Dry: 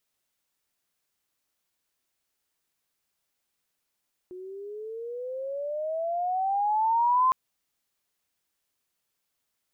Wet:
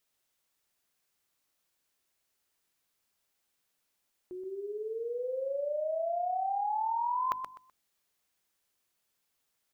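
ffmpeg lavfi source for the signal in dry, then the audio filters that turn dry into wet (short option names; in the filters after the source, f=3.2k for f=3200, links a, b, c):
-f lavfi -i "aevalsrc='pow(10,(-18+20*(t/3.01-1))/20)*sin(2*PI*360*3.01/(18.5*log(2)/12)*(exp(18.5*log(2)/12*t/3.01)-1))':d=3.01:s=44100"
-af "bandreject=f=50:t=h:w=6,bandreject=f=100:t=h:w=6,bandreject=f=150:t=h:w=6,bandreject=f=200:t=h:w=6,bandreject=f=250:t=h:w=6,bandreject=f=300:t=h:w=6,areverse,acompressor=threshold=-31dB:ratio=6,areverse,aecho=1:1:126|252|378:0.398|0.0955|0.0229"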